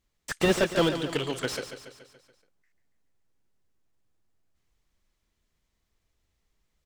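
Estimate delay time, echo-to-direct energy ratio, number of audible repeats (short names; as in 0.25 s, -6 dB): 0.142 s, -8.5 dB, 5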